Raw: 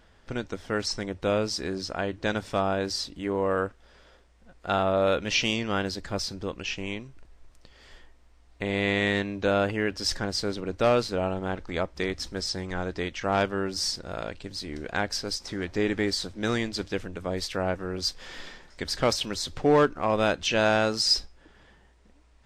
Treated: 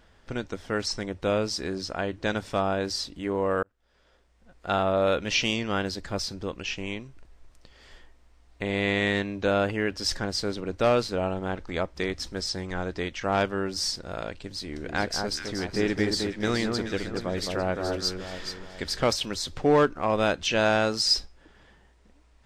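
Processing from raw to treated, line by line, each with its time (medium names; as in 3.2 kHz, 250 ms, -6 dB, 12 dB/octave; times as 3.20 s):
3.63–4.71 s: fade in
14.54–19.03 s: echo whose repeats swap between lows and highs 213 ms, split 1.5 kHz, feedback 60%, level -3.5 dB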